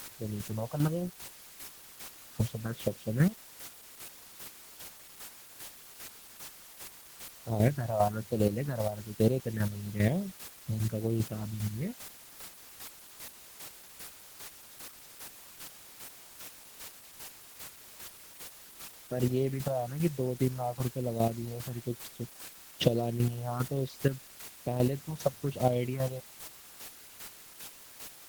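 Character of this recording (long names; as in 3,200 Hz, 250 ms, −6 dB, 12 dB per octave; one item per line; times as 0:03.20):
phaser sweep stages 4, 1.1 Hz, lowest notch 310–1,800 Hz
a quantiser's noise floor 8 bits, dither triangular
chopped level 2.5 Hz, depth 60%, duty 20%
Opus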